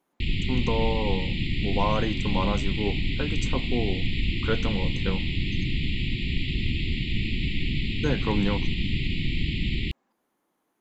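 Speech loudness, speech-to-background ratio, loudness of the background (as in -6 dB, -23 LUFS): -31.0 LUFS, -2.5 dB, -28.5 LUFS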